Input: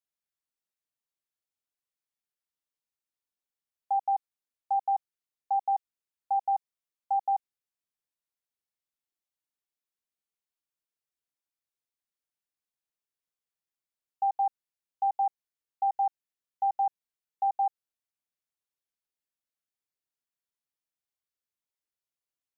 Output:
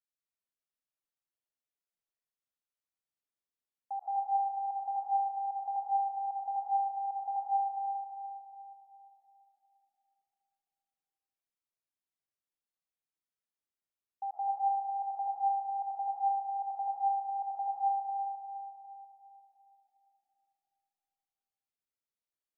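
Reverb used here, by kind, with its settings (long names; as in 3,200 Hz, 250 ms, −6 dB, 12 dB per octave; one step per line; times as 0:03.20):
comb and all-pass reverb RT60 3.4 s, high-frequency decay 0.3×, pre-delay 95 ms, DRR −4.5 dB
level −10.5 dB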